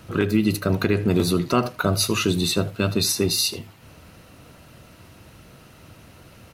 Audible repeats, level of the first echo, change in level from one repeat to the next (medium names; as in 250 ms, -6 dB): 1, -19.5 dB, no regular repeats